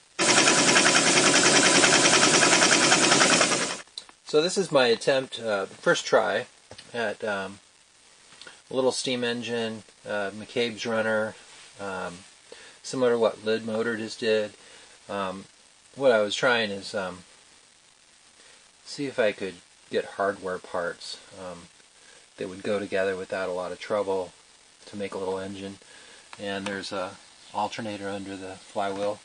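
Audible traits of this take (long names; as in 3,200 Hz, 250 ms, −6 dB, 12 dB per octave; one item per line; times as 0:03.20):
a quantiser's noise floor 8 bits, dither none
MP3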